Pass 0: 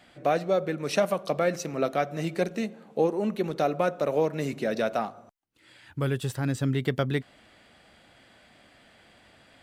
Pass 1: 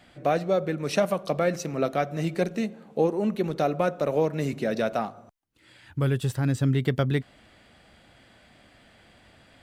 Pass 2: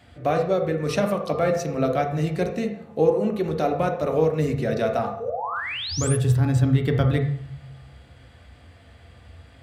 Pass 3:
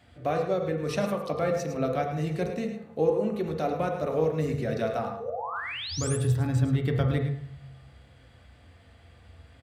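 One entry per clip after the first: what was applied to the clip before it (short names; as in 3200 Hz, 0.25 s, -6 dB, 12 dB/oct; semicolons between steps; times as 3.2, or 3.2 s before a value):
low shelf 160 Hz +7.5 dB
painted sound rise, 5.2–6.17, 430–11000 Hz -31 dBFS; on a send at -2.5 dB: reverb RT60 0.65 s, pre-delay 3 ms
echo 0.107 s -9.5 dB; gain -5.5 dB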